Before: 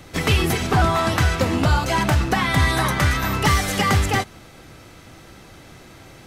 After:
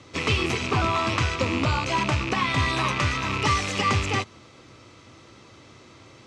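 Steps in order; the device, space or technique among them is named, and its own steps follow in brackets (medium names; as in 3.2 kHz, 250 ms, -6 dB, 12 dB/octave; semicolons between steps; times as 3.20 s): car door speaker with a rattle (rattle on loud lows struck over -29 dBFS, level -14 dBFS; cabinet simulation 100–7200 Hz, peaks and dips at 100 Hz +3 dB, 170 Hz -8 dB, 750 Hz -7 dB, 1.1 kHz +5 dB, 1.6 kHz -7 dB); trim -3.5 dB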